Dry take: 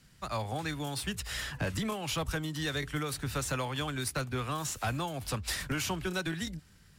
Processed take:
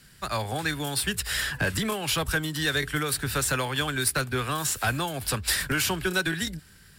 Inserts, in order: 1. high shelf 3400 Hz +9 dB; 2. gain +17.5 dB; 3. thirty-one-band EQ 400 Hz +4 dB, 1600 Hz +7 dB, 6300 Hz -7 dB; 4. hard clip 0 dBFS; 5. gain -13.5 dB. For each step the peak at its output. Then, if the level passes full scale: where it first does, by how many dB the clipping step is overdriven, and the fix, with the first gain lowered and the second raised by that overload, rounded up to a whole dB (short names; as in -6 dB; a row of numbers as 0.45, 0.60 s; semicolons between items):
-13.5, +4.0, +3.0, 0.0, -13.5 dBFS; step 2, 3.0 dB; step 2 +14.5 dB, step 5 -10.5 dB